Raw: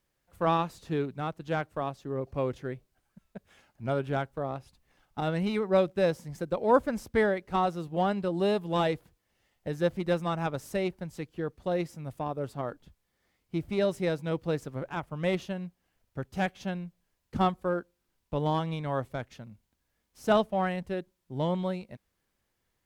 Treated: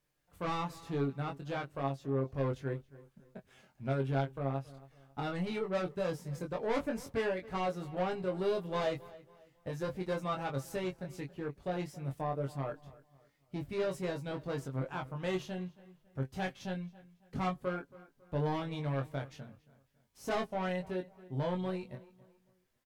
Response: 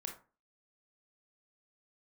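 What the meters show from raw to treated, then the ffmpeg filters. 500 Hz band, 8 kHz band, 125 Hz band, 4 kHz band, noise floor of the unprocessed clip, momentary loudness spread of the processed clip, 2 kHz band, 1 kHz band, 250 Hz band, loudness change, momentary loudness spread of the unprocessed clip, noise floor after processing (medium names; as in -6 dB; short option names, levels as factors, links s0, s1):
-6.5 dB, -2.5 dB, -3.0 dB, -5.5 dB, -79 dBFS, 11 LU, -5.5 dB, -7.5 dB, -6.0 dB, -6.0 dB, 13 LU, -72 dBFS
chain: -filter_complex "[0:a]asoftclip=type=tanh:threshold=0.0501,flanger=delay=6.6:depth=1.4:regen=44:speed=0.16:shape=triangular,asplit=2[s0][s1];[s1]adelay=22,volume=0.668[s2];[s0][s2]amix=inputs=2:normalize=0,asplit=2[s3][s4];[s4]adelay=275,lowpass=f=3700:p=1,volume=0.106,asplit=2[s5][s6];[s6]adelay=275,lowpass=f=3700:p=1,volume=0.37,asplit=2[s7][s8];[s8]adelay=275,lowpass=f=3700:p=1,volume=0.37[s9];[s5][s7][s9]amix=inputs=3:normalize=0[s10];[s3][s10]amix=inputs=2:normalize=0"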